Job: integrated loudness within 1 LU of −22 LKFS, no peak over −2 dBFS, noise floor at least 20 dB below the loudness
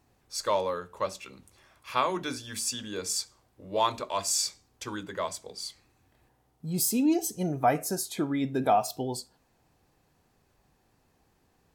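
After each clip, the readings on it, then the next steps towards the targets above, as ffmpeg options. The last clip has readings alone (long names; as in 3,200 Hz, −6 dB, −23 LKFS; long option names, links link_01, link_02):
integrated loudness −30.0 LKFS; sample peak −10.5 dBFS; target loudness −22.0 LKFS
→ -af "volume=8dB"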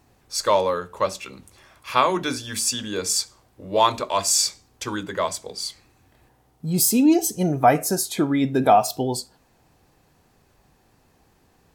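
integrated loudness −22.0 LKFS; sample peak −2.5 dBFS; background noise floor −61 dBFS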